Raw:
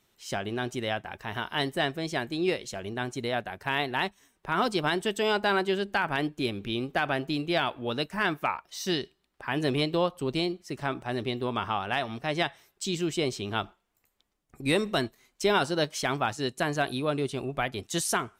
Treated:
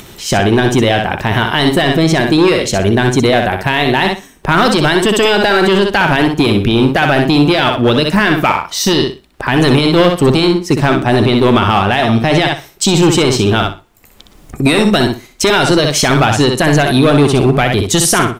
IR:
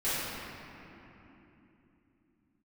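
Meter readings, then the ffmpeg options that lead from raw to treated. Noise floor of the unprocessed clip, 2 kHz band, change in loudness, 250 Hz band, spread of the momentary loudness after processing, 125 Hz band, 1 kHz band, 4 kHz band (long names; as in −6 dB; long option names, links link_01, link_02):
−75 dBFS, +16.0 dB, +18.0 dB, +20.0 dB, 5 LU, +22.0 dB, +16.0 dB, +17.0 dB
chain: -filter_complex "[0:a]lowshelf=frequency=440:gain=6.5,acrossover=split=1600[link_01][link_02];[link_01]volume=25.5dB,asoftclip=hard,volume=-25.5dB[link_03];[link_03][link_02]amix=inputs=2:normalize=0,acompressor=mode=upward:threshold=-46dB:ratio=2.5,aecho=1:1:62|124|186:0.447|0.0938|0.0197,alimiter=level_in=21dB:limit=-1dB:release=50:level=0:latency=1,volume=-1dB"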